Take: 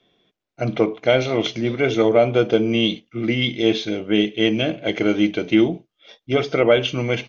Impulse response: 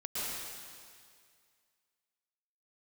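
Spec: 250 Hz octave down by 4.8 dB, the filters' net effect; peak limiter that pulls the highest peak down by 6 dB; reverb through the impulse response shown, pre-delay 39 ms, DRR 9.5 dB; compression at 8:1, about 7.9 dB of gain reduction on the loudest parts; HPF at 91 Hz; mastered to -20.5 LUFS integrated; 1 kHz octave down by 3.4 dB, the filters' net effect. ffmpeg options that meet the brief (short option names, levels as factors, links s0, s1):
-filter_complex "[0:a]highpass=91,equalizer=f=250:t=o:g=-6.5,equalizer=f=1000:t=o:g=-5,acompressor=threshold=0.0891:ratio=8,alimiter=limit=0.15:level=0:latency=1,asplit=2[s0][s1];[1:a]atrim=start_sample=2205,adelay=39[s2];[s1][s2]afir=irnorm=-1:irlink=0,volume=0.2[s3];[s0][s3]amix=inputs=2:normalize=0,volume=2.37"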